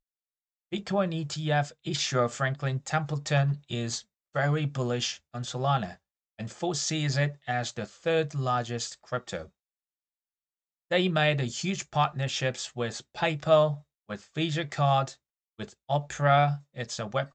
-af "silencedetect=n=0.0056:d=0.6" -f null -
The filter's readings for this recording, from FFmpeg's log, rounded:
silence_start: 0.00
silence_end: 0.72 | silence_duration: 0.72
silence_start: 9.47
silence_end: 10.91 | silence_duration: 1.44